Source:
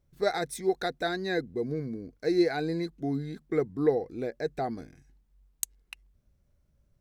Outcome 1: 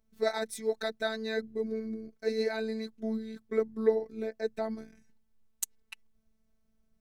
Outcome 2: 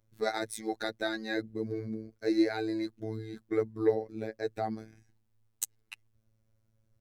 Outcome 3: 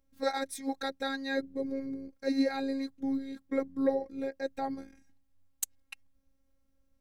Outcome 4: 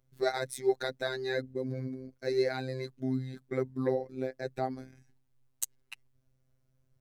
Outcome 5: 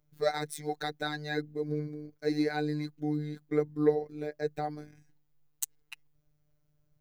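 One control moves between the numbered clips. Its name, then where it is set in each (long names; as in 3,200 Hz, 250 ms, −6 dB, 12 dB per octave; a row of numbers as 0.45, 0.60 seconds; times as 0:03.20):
phases set to zero, frequency: 220, 110, 270, 130, 150 Hertz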